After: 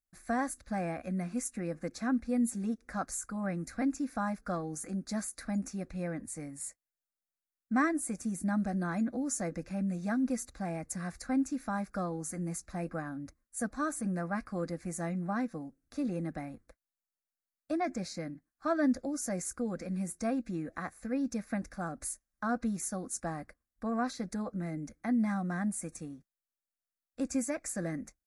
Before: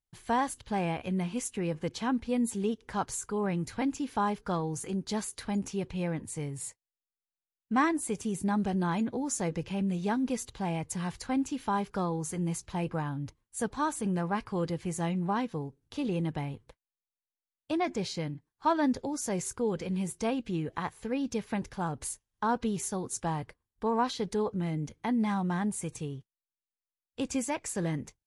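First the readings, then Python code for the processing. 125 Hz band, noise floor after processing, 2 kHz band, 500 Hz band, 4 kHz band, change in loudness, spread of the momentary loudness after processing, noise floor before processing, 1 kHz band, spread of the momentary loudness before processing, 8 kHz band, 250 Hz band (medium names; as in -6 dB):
-5.0 dB, under -85 dBFS, -1.5 dB, -4.5 dB, -9.0 dB, -2.5 dB, 9 LU, under -85 dBFS, -6.0 dB, 7 LU, -1.5 dB, -1.5 dB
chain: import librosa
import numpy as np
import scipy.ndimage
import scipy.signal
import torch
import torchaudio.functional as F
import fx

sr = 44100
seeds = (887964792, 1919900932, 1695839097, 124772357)

y = fx.fixed_phaser(x, sr, hz=620.0, stages=8)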